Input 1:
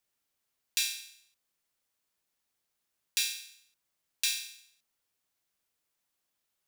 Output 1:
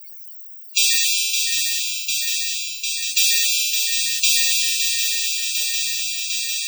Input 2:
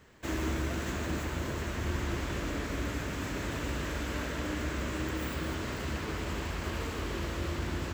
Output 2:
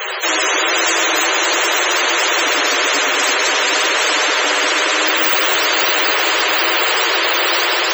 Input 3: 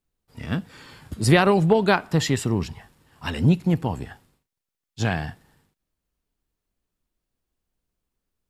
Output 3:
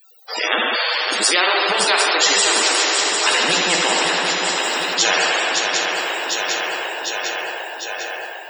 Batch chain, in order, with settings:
in parallel at −2 dB: brickwall limiter −16 dBFS
on the sum: spectral tilt +2.5 dB per octave
reverb whose tail is shaped and stops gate 450 ms falling, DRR −1 dB
automatic gain control gain up to 3.5 dB
high-pass filter 430 Hz 24 dB per octave
parametric band 11,000 Hz −13 dB 0.6 octaves
spectral peaks only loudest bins 64
feedback echo with a long and a short gap by turns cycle 751 ms, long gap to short 3 to 1, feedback 51%, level −16 dB
every bin compressed towards the loudest bin 4 to 1
normalise the peak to −2 dBFS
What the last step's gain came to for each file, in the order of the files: +8.0, +13.0, +3.0 decibels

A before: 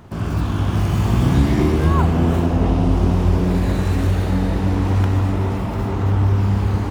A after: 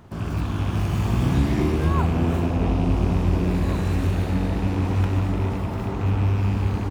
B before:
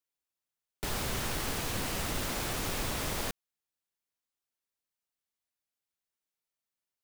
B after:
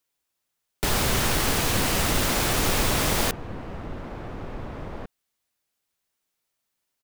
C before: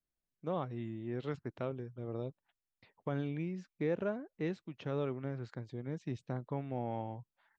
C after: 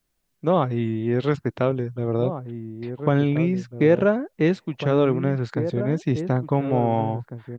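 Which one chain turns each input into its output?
loose part that buzzes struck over −17 dBFS, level −26 dBFS
slap from a distant wall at 300 metres, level −9 dB
loudness normalisation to −23 LKFS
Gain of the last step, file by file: −5.0, +10.5, +16.5 decibels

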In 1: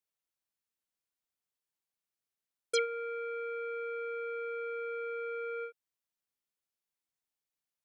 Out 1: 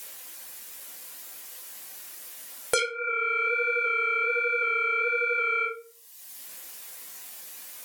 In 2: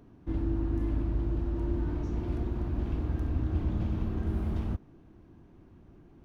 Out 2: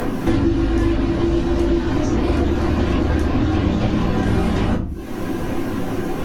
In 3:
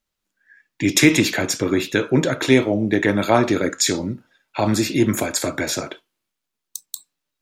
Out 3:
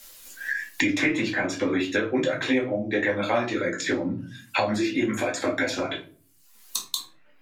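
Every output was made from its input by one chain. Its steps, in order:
treble cut that deepens with the level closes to 1,900 Hz, closed at −18.5 dBFS
RIAA equalisation recording
notch filter 1,300 Hz, Q 24
reverb reduction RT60 0.6 s
low-shelf EQ 61 Hz +8 dB
flanger 1.3 Hz, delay 1.2 ms, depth 9.6 ms, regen −31%
rectangular room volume 150 cubic metres, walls furnished, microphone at 2.1 metres
multiband upward and downward compressor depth 100%
normalise the peak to −6 dBFS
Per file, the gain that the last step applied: +16.0, +20.5, −4.0 decibels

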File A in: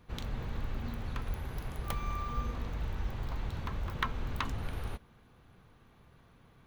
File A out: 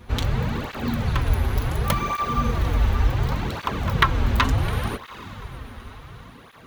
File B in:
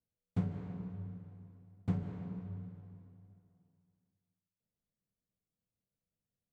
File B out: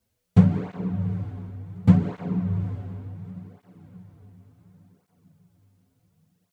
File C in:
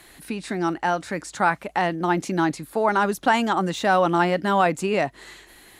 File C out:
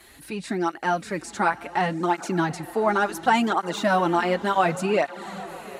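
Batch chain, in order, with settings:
feedback delay with all-pass diffusion 802 ms, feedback 43%, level −15.5 dB
through-zero flanger with one copy inverted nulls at 0.69 Hz, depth 7 ms
loudness normalisation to −24 LKFS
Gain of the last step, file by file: +18.0, +19.0, +1.5 decibels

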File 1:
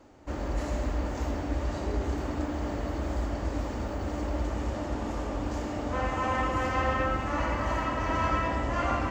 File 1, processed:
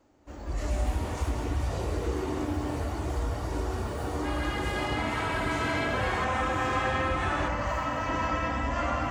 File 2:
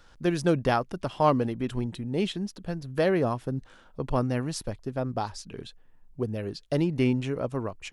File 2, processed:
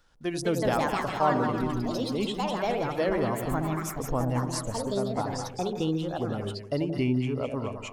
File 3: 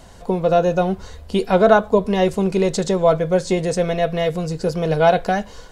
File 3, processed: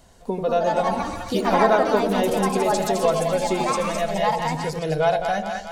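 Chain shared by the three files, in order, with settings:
high-shelf EQ 7,800 Hz +6 dB
noise reduction from a noise print of the clip's start 9 dB
echo with a time of its own for lows and highs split 770 Hz, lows 87 ms, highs 211 ms, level −6 dB
delay with pitch and tempo change per echo 255 ms, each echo +4 semitones, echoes 2
in parallel at +3 dB: downward compressor, threshold −25 dBFS
on the sum: level −8 dB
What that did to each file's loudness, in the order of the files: +1.0, 0.0, −3.0 LU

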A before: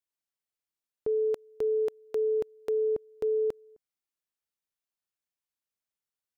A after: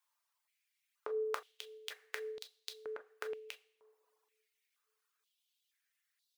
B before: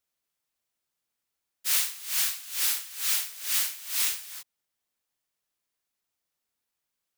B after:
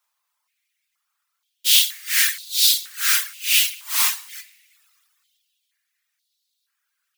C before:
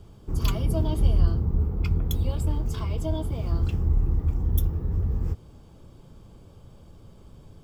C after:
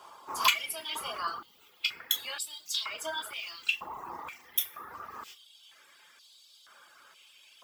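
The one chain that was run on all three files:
coupled-rooms reverb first 0.59 s, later 2.2 s, from −18 dB, DRR 3 dB
reverb reduction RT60 0.88 s
high-pass on a step sequencer 2.1 Hz 1,000–3,900 Hz
level +6.5 dB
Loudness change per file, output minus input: −14.0, +9.0, −6.0 LU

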